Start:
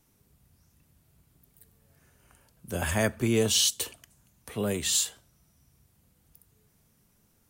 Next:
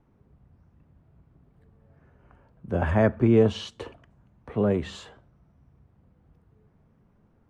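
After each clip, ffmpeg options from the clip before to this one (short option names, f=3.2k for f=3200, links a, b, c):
-af "lowpass=1.2k,volume=6.5dB"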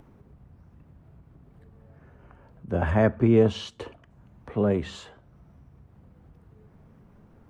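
-af "acompressor=mode=upward:threshold=-44dB:ratio=2.5"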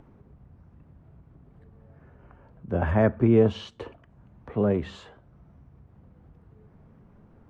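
-af "lowpass=f=2.6k:p=1"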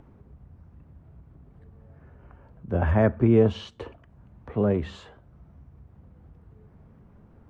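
-af "equalizer=f=67:t=o:w=0.88:g=5.5"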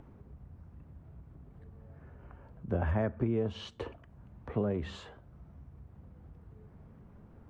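-af "acompressor=threshold=-26dB:ratio=6,volume=-1.5dB"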